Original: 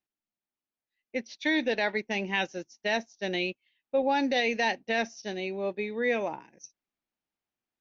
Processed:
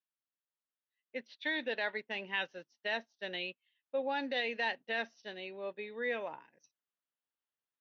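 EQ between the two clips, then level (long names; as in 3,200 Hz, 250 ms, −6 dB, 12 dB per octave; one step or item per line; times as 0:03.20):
loudspeaker in its box 130–3,500 Hz, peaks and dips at 200 Hz −6 dB, 340 Hz −8 dB, 770 Hz −6 dB, 2,300 Hz −9 dB
tilt shelving filter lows −3.5 dB
low-shelf EQ 190 Hz −4 dB
−4.5 dB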